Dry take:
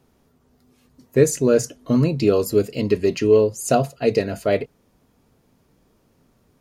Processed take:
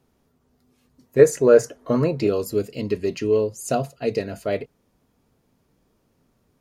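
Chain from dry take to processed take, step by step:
0:01.19–0:02.27: flat-topped bell 890 Hz +9.5 dB 2.7 octaves
level −5 dB

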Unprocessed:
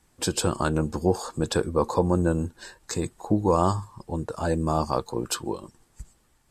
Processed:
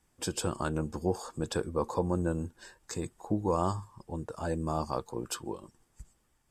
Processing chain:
notch filter 4,100 Hz, Q 9.9
level −7.5 dB

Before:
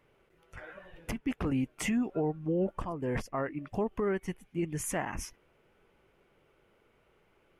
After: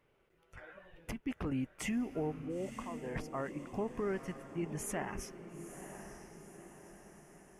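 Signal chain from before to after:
0:02.45–0:03.16: low-shelf EQ 300 Hz −11 dB
feedback delay with all-pass diffusion 949 ms, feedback 51%, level −10 dB
level −5.5 dB

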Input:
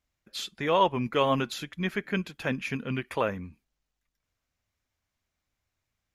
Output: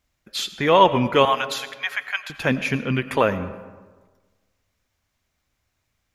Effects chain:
0:01.25–0:02.30: elliptic high-pass filter 700 Hz
convolution reverb RT60 1.4 s, pre-delay 55 ms, DRR 13 dB
level +8.5 dB

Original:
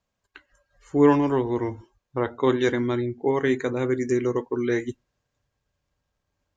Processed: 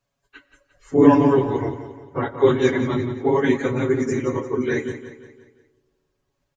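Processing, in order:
random phases in long frames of 50 ms
comb filter 7.2 ms
on a send: repeating echo 175 ms, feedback 46%, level −11.5 dB
on the sum: comb and all-pass reverb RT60 1.6 s, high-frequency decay 0.3×, pre-delay 55 ms, DRR 19.5 dB
level +1 dB

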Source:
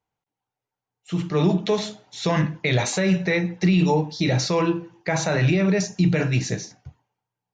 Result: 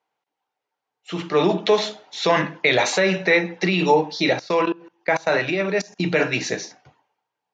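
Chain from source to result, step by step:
0:04.33–0:06.00: output level in coarse steps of 23 dB
band-pass filter 380–4,800 Hz
level +7 dB

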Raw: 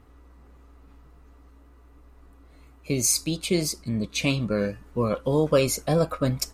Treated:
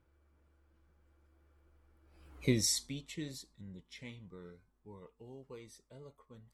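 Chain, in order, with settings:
source passing by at 0:02.41, 53 m/s, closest 4.5 metres
reversed playback
upward compression, threshold −59 dBFS
reversed playback

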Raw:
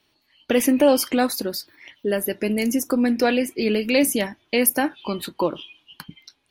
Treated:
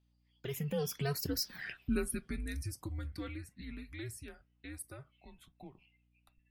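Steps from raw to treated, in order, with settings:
source passing by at 0:01.58, 38 m/s, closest 2.2 metres
dynamic equaliser 980 Hz, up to −6 dB, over −57 dBFS, Q 1.4
frequency shifter −140 Hz
mains hum 60 Hz, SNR 33 dB
level +6.5 dB

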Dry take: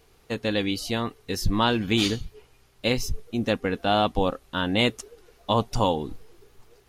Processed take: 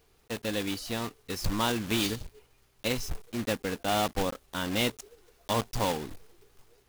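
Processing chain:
one scale factor per block 3 bits
level −6.5 dB

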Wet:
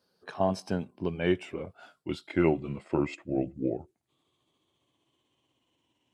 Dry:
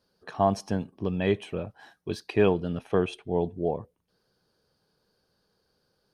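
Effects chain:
pitch glide at a constant tempo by −8 semitones starting unshifted
high-pass filter 62 Hz
low-shelf EQ 100 Hz −10 dB

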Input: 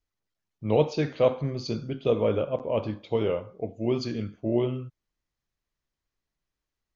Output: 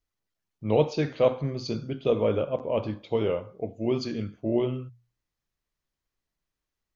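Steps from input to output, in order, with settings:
mains-hum notches 60/120 Hz

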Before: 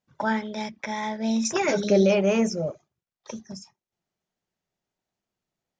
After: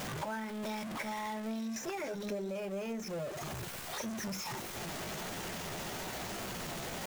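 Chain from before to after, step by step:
converter with a step at zero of −25 dBFS
low-shelf EQ 360 Hz −3 dB
downward compressor 12 to 1, threshold −30 dBFS, peak gain reduction 15 dB
tempo change 0.82×
in parallel at −7.5 dB: sample-rate reduction 7,700 Hz
on the sum: level −8.5 dB

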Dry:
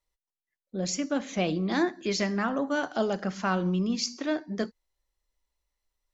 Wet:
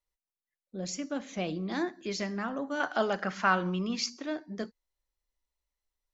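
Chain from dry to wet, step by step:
0:02.80–0:04.10: parametric band 1,600 Hz +11.5 dB 2.6 octaves
level −6 dB

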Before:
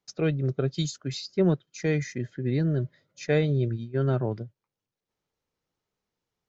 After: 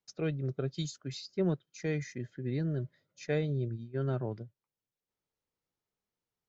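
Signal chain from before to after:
0:03.34–0:03.84: parametric band 2,000 Hz −2 dB → −8 dB 2.7 octaves
level −7.5 dB

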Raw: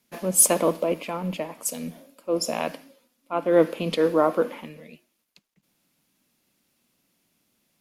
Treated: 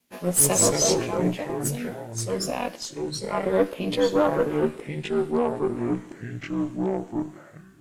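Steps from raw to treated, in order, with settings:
every overlapping window played backwards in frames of 33 ms
harmonic generator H 4 −25 dB, 6 −20 dB, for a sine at −8 dBFS
delay with pitch and tempo change per echo 97 ms, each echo −4 semitones, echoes 2
level +1.5 dB

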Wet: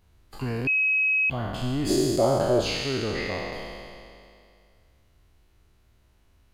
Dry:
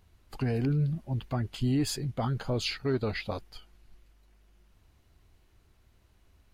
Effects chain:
peak hold with a decay on every bin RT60 2.38 s
0:00.67–0:01.30: beep over 2,550 Hz −17.5 dBFS
0:01.89–0:02.61: hollow resonant body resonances 380/570 Hz, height 16 dB
level −2 dB

